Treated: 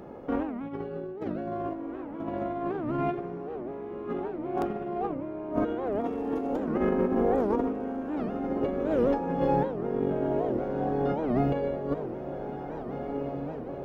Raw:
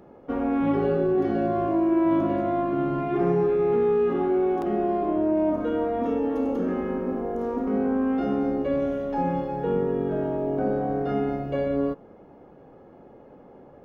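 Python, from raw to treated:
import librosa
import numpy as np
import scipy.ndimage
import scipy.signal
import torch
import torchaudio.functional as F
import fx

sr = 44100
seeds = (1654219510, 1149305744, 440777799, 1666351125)

y = fx.over_compress(x, sr, threshold_db=-29.0, ratio=-0.5)
y = fx.echo_diffused(y, sr, ms=1711, feedback_pct=56, wet_db=-8.0)
y = fx.record_warp(y, sr, rpm=78.0, depth_cents=250.0)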